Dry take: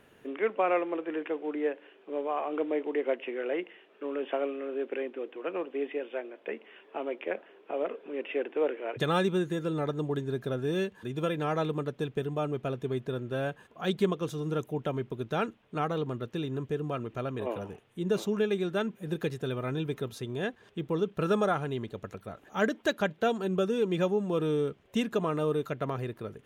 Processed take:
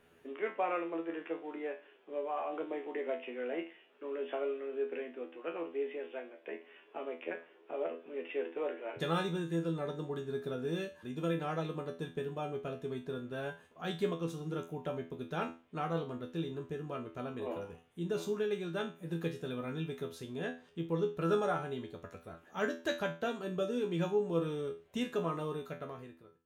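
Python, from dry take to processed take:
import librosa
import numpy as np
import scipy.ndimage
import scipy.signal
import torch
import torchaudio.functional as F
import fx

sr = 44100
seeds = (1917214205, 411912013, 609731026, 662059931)

y = fx.fade_out_tail(x, sr, length_s=0.97)
y = fx.comb_fb(y, sr, f0_hz=83.0, decay_s=0.32, harmonics='all', damping=0.0, mix_pct=90)
y = y * librosa.db_to_amplitude(2.5)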